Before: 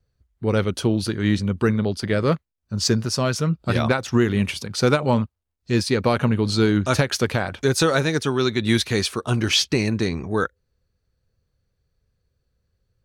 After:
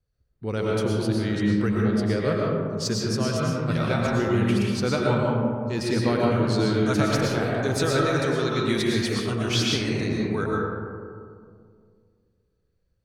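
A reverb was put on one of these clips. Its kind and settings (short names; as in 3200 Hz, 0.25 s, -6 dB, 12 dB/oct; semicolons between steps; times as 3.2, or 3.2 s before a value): digital reverb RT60 2.2 s, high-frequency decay 0.3×, pre-delay 75 ms, DRR -3.5 dB; gain -8 dB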